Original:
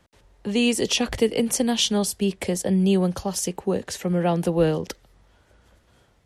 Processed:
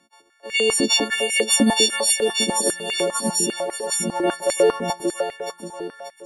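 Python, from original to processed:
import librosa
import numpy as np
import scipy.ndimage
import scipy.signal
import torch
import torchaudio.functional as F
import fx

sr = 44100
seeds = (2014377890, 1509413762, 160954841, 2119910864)

p1 = fx.freq_snap(x, sr, grid_st=4)
p2 = fx.high_shelf(p1, sr, hz=11000.0, db=-9.5)
p3 = fx.level_steps(p2, sr, step_db=11)
p4 = p2 + (p3 * 10.0 ** (-1.0 / 20.0))
p5 = fx.peak_eq(p4, sr, hz=2300.0, db=-13.5, octaves=0.8, at=(3.35, 3.92))
p6 = p5 + fx.echo_feedback(p5, sr, ms=583, feedback_pct=41, wet_db=-4.5, dry=0)
p7 = fx.filter_held_highpass(p6, sr, hz=10.0, low_hz=240.0, high_hz=2100.0)
y = p7 * 10.0 ** (-6.5 / 20.0)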